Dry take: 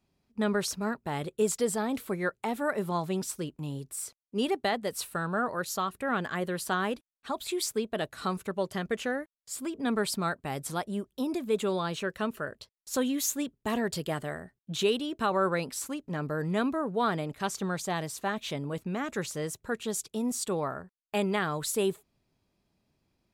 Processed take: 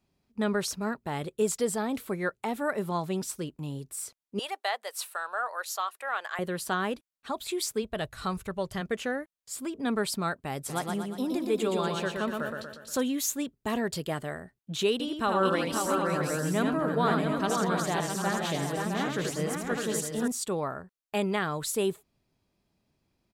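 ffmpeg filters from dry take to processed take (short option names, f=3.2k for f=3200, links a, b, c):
-filter_complex "[0:a]asettb=1/sr,asplit=3[a][b][c];[a]atrim=end=4.394[d];[b]atrim=start=4.39:end=6.39,asetpts=PTS-STARTPTS,afade=t=in:d=0.004:c=qsin,afade=t=out:st=1.996:d=0.004:c=qsin,highpass=f=630:w=0.5412,highpass=f=630:w=1.3066[e];[c]atrim=start=6.386[f];[d][e]acrossfade=d=0.004:c1=hsin:c2=qsin[g];[g][f]acrossfade=d=0.004:c1=qsin:c2=hsin,asplit=3[h][i][j];[h]afade=t=out:st=7.81:d=0.02[k];[i]asubboost=boost=6.5:cutoff=97,afade=t=in:st=7.81:d=0.02,afade=t=out:st=8.8:d=0.02[l];[j]afade=t=in:st=8.8:d=0.02[m];[k][l][m]amix=inputs=3:normalize=0,asplit=3[n][o][p];[n]afade=t=out:st=10.68:d=0.02[q];[o]aecho=1:1:119|238|357|476|595|714|833:0.631|0.322|0.164|0.0837|0.0427|0.0218|0.0111,afade=t=in:st=10.68:d=0.02,afade=t=out:st=13:d=0.02[r];[p]afade=t=in:st=13:d=0.02[s];[q][r][s]amix=inputs=3:normalize=0,asettb=1/sr,asplit=3[t][u][v];[t]atrim=end=14.924[w];[u]atrim=start=14.92:end=20.28,asetpts=PTS-STARTPTS,afade=t=in:d=0.004:c=qsin,afade=t=out:st=5.356:d=0.004:c=qsin,aecho=1:1:79|329|507|530|660|750:0.596|0.15|0.266|0.596|0.447|0.398,atrim=end_sample=236376[x];[v]atrim=start=20.276[y];[w][x]acrossfade=d=0.004:c1=hsin:c2=qsin[z];[z][y]acrossfade=d=0.004:c1=qsin:c2=hsin"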